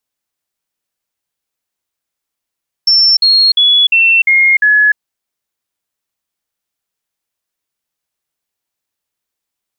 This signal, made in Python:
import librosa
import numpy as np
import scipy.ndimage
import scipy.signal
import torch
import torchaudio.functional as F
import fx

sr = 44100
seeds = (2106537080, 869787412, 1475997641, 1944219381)

y = fx.stepped_sweep(sr, from_hz=5390.0, direction='down', per_octave=3, tones=6, dwell_s=0.3, gap_s=0.05, level_db=-5.5)